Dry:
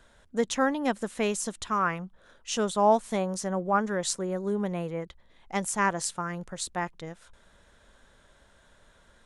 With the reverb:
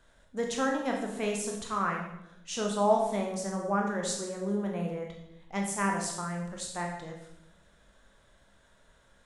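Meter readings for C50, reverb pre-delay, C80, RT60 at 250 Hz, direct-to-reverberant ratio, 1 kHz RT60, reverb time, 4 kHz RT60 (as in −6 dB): 4.0 dB, 15 ms, 7.0 dB, 1.0 s, 0.0 dB, 0.75 s, 0.80 s, 0.75 s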